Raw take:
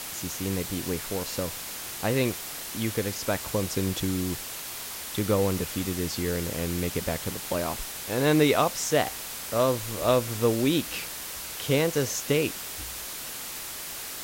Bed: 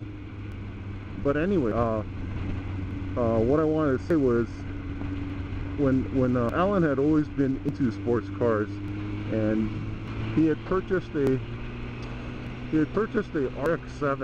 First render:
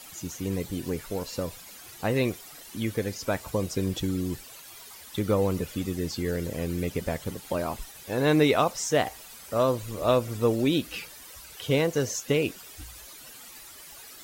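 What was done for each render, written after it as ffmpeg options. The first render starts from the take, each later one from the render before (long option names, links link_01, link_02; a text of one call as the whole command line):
ffmpeg -i in.wav -af "afftdn=noise_reduction=13:noise_floor=-37" out.wav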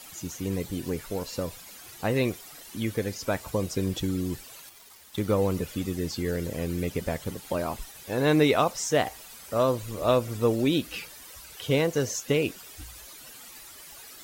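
ffmpeg -i in.wav -filter_complex "[0:a]asettb=1/sr,asplit=3[link_01][link_02][link_03];[link_01]atrim=end=4.694[link_04];[link_02]atrim=start=4.69:end=5.38,asetpts=PTS-STARTPTS,afade=type=in:duration=0.004:curve=qsin,afade=type=out:start_time=0.686:duration=0.004:curve=qsin,aeval=exprs='sgn(val(0))*max(abs(val(0))-0.00355,0)':channel_layout=same[link_05];[link_03]atrim=start=5.376[link_06];[link_04][link_05]acrossfade=duration=0.004:curve1=hsin:curve2=qsin[link_07];[link_07][link_06]acrossfade=duration=0.004:curve1=qsin:curve2=hsin" out.wav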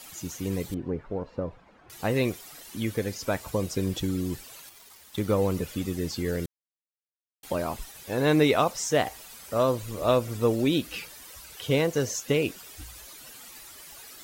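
ffmpeg -i in.wav -filter_complex "[0:a]asettb=1/sr,asplit=3[link_01][link_02][link_03];[link_01]atrim=end=0.744[link_04];[link_02]atrim=start=0.74:end=1.9,asetpts=PTS-STARTPTS,afade=type=in:duration=0.004:curve=qsin,afade=type=out:start_time=1.156:duration=0.004:curve=qsin,lowpass=1200[link_05];[link_03]atrim=start=1.896[link_06];[link_04][link_05]acrossfade=duration=0.004:curve1=hsin:curve2=qsin[link_07];[link_07][link_06]acrossfade=duration=0.004:curve1=qsin:curve2=hsin,asplit=3[link_08][link_09][link_10];[link_08]atrim=end=6.46,asetpts=PTS-STARTPTS,afade=type=out:start_time=6.456:duration=0.004:curve=hsin[link_11];[link_09]atrim=start=6.46:end=7.43,asetpts=PTS-STARTPTS,volume=0[link_12];[link_10]atrim=start=7.43,asetpts=PTS-STARTPTS,afade=type=in:duration=0.004:curve=hsin[link_13];[link_11][link_12][link_13]concat=n=3:v=0:a=1" out.wav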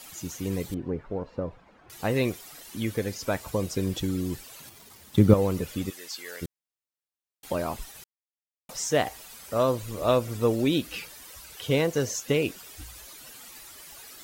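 ffmpeg -i in.wav -filter_complex "[0:a]asettb=1/sr,asplit=3[link_01][link_02][link_03];[link_01]atrim=end=4.604[link_04];[link_02]atrim=start=4.6:end=5.34,asetpts=PTS-STARTPTS,afade=type=in:duration=0.004:curve=qsin,afade=type=out:start_time=0.736:duration=0.004:curve=qsin,equalizer=frequency=140:width=0.4:gain=13.5[link_05];[link_03]atrim=start=5.336[link_06];[link_04][link_05]acrossfade=duration=0.004:curve1=hsin:curve2=qsin[link_07];[link_07][link_06]acrossfade=duration=0.004:curve1=qsin:curve2=hsin,asplit=3[link_08][link_09][link_10];[link_08]afade=type=out:start_time=5.89:duration=0.02[link_11];[link_09]highpass=1000,afade=type=in:start_time=5.89:duration=0.02,afade=type=out:start_time=6.41:duration=0.02[link_12];[link_10]afade=type=in:start_time=6.41:duration=0.02[link_13];[link_11][link_12][link_13]amix=inputs=3:normalize=0,asplit=3[link_14][link_15][link_16];[link_14]atrim=end=8.04,asetpts=PTS-STARTPTS,afade=type=out:start_time=8.036:duration=0.004:curve=hsin[link_17];[link_15]atrim=start=8.04:end=8.69,asetpts=PTS-STARTPTS,volume=0[link_18];[link_16]atrim=start=8.69,asetpts=PTS-STARTPTS,afade=type=in:duration=0.004:curve=hsin[link_19];[link_17][link_18][link_19]concat=n=3:v=0:a=1" out.wav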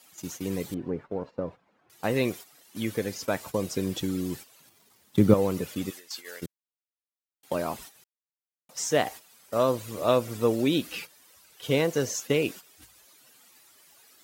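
ffmpeg -i in.wav -af "agate=range=-11dB:threshold=-39dB:ratio=16:detection=peak,highpass=130" out.wav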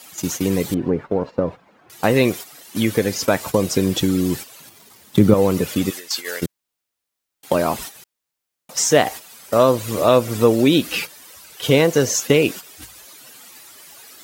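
ffmpeg -i in.wav -filter_complex "[0:a]asplit=2[link_01][link_02];[link_02]acompressor=threshold=-32dB:ratio=6,volume=2dB[link_03];[link_01][link_03]amix=inputs=2:normalize=0,alimiter=level_in=7dB:limit=-1dB:release=50:level=0:latency=1" out.wav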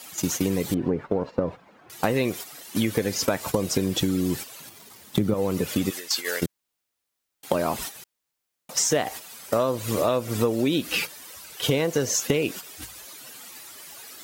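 ffmpeg -i in.wav -af "acompressor=threshold=-20dB:ratio=5" out.wav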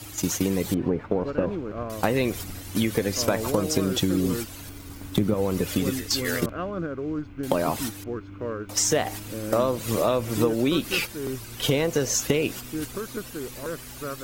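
ffmpeg -i in.wav -i bed.wav -filter_complex "[1:a]volume=-7.5dB[link_01];[0:a][link_01]amix=inputs=2:normalize=0" out.wav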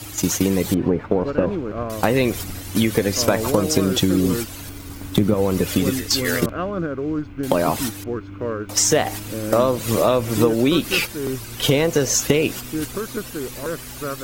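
ffmpeg -i in.wav -af "volume=5.5dB,alimiter=limit=-2dB:level=0:latency=1" out.wav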